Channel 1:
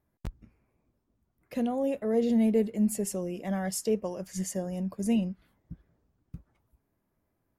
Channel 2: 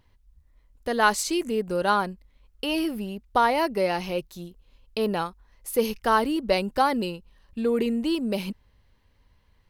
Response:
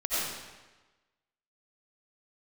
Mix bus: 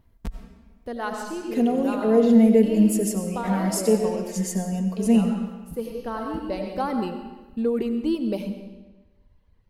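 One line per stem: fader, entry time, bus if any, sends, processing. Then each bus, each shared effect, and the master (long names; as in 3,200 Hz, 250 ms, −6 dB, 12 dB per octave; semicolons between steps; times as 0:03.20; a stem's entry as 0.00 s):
+1.0 dB, 0.00 s, send −14 dB, comb filter 4.4 ms, depth 97%
−3.0 dB, 0.00 s, send −16.5 dB, reverb reduction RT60 0.84 s; tilt shelving filter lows +6 dB, about 770 Hz; automatic ducking −11 dB, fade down 1.35 s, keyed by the first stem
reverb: on, RT60 1.2 s, pre-delay 50 ms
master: no processing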